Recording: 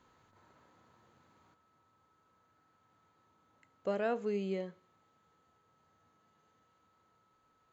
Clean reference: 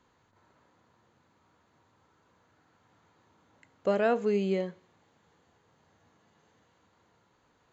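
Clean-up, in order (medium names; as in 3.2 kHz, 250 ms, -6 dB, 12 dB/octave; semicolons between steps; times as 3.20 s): band-stop 1.3 kHz, Q 30; trim 0 dB, from 1.54 s +7.5 dB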